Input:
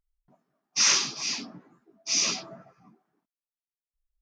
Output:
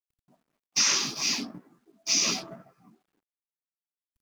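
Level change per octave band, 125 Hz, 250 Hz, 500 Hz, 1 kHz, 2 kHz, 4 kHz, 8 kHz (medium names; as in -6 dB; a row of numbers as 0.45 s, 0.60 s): +3.0 dB, +4.5 dB, +1.5 dB, -0.5 dB, -0.5 dB, 0.0 dB, -0.5 dB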